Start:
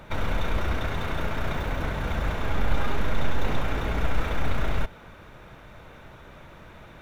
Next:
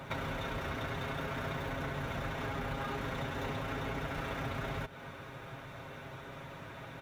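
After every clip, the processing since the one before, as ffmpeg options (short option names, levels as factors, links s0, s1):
-af "highpass=71,aecho=1:1:7.4:0.58,acompressor=threshold=0.0178:ratio=5"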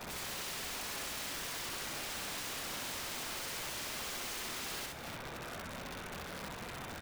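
-af "afftfilt=real='hypot(re,im)*cos(2*PI*random(0))':imag='hypot(re,im)*sin(2*PI*random(1))':win_size=512:overlap=0.75,aeval=exprs='(mod(178*val(0)+1,2)-1)/178':c=same,aecho=1:1:64.14|285.7:0.891|0.316,volume=2"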